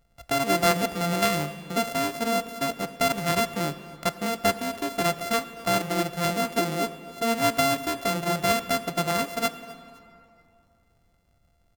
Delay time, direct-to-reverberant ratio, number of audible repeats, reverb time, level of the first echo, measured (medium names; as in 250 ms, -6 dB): 256 ms, 11.5 dB, 2, 2.7 s, -21.5 dB